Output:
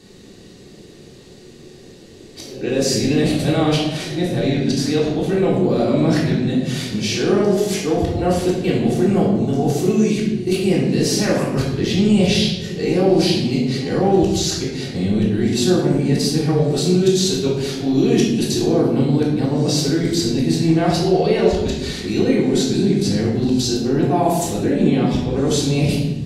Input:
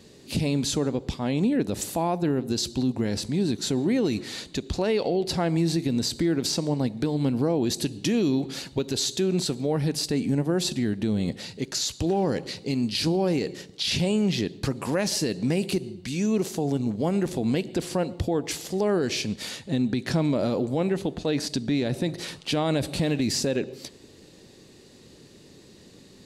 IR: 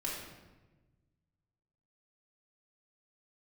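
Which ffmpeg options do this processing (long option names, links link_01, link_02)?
-filter_complex "[0:a]areverse,acontrast=85[link_01];[1:a]atrim=start_sample=2205,asetrate=52920,aresample=44100[link_02];[link_01][link_02]afir=irnorm=-1:irlink=0,volume=-1dB"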